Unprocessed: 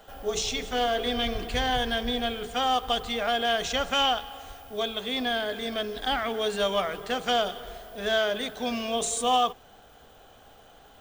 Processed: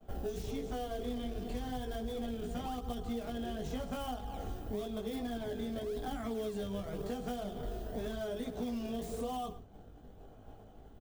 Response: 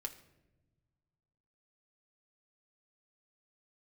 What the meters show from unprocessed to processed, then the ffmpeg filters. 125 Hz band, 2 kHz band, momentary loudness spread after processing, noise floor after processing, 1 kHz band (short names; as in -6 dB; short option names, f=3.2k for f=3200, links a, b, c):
-0.5 dB, -21.0 dB, 16 LU, -55 dBFS, -15.5 dB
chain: -filter_complex "[0:a]bandreject=f=530:w=12,acrossover=split=120|250|2300[a][b][c][d];[a]acompressor=threshold=-46dB:ratio=4[e];[b]acompressor=threshold=-49dB:ratio=4[f];[c]acompressor=threshold=-35dB:ratio=4[g];[d]acompressor=threshold=-45dB:ratio=4[h];[e][f][g][h]amix=inputs=4:normalize=0,agate=range=-33dB:threshold=-45dB:ratio=3:detection=peak,equalizer=f=2.5k:w=0.56:g=-3.5,flanger=delay=16.5:depth=3.9:speed=0.35,asplit=2[i][j];[j]acrusher=samples=23:mix=1:aa=0.000001:lfo=1:lforange=36.8:lforate=0.93,volume=-6dB[k];[i][k]amix=inputs=2:normalize=0,tiltshelf=f=660:g=9,aecho=1:1:106:0.106,acrossover=split=3400[l][m];[l]acompressor=threshold=-42dB:ratio=6[n];[m]aeval=exprs='(mod(422*val(0)+1,2)-1)/422':c=same[o];[n][o]amix=inputs=2:normalize=0,volume=6dB"